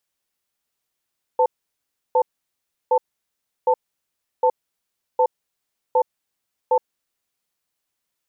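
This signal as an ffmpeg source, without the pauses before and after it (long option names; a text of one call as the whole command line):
ffmpeg -f lavfi -i "aevalsrc='0.158*(sin(2*PI*505*t)+sin(2*PI*887*t))*clip(min(mod(t,0.76),0.07-mod(t,0.76))/0.005,0,1)':duration=5.95:sample_rate=44100" out.wav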